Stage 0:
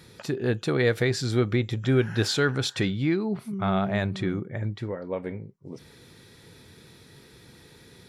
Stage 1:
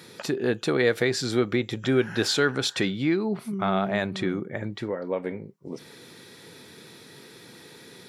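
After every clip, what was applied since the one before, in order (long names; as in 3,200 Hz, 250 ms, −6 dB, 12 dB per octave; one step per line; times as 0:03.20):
high-pass filter 200 Hz 12 dB per octave
in parallel at −1 dB: downward compressor, threshold −34 dBFS, peak gain reduction 15 dB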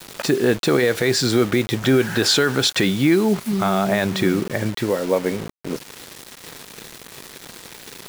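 brickwall limiter −16 dBFS, peak gain reduction 7.5 dB
bit reduction 7 bits
level +9 dB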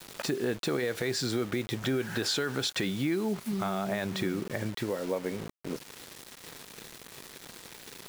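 downward compressor 2 to 1, threshold −22 dBFS, peak gain reduction 6 dB
level −8 dB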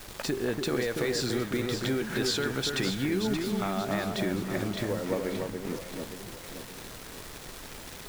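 background noise pink −48 dBFS
delay that swaps between a low-pass and a high-pass 288 ms, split 1,800 Hz, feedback 67%, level −4 dB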